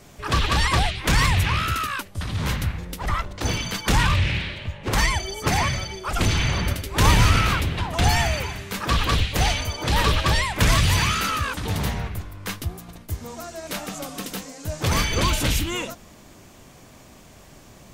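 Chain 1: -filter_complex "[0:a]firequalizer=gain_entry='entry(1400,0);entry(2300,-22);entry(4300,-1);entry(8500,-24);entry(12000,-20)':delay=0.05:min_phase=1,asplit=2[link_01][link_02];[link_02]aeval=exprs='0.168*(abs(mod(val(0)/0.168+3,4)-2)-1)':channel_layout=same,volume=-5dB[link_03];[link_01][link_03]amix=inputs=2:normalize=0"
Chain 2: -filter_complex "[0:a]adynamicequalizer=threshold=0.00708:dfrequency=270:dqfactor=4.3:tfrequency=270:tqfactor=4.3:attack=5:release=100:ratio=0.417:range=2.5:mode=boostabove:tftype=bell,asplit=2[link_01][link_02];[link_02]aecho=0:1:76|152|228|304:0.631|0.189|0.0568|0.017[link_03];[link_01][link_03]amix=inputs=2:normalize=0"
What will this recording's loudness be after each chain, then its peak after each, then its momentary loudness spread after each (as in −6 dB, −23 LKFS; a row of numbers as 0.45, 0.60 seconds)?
−21.5, −21.5 LKFS; −5.5, −1.5 dBFS; 13, 13 LU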